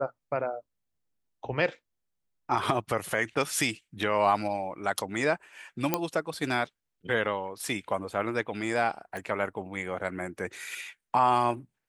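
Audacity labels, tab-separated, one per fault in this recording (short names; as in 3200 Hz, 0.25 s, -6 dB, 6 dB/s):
5.940000	5.940000	pop -8 dBFS
9.170000	9.170000	pop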